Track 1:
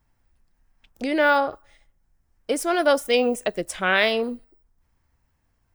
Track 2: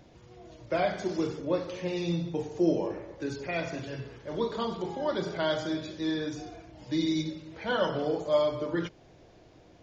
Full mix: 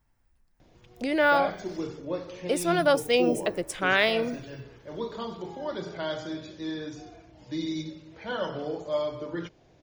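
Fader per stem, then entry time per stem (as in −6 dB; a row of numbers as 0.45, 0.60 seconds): −3.0, −3.5 decibels; 0.00, 0.60 seconds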